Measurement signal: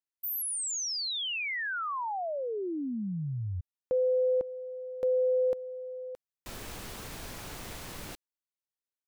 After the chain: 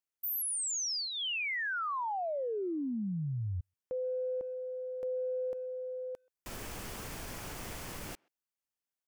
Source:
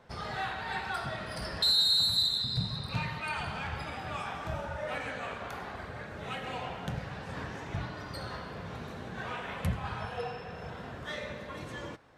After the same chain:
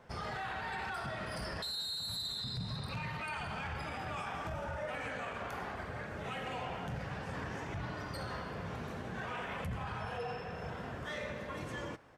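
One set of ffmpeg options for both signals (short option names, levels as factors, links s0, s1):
-filter_complex "[0:a]equalizer=f=3900:w=4.2:g=-6,alimiter=level_in=2.37:limit=0.0631:level=0:latency=1:release=24,volume=0.422,asplit=2[s0][s1];[s1]adelay=130,highpass=300,lowpass=3400,asoftclip=type=hard:threshold=0.01,volume=0.0355[s2];[s0][s2]amix=inputs=2:normalize=0"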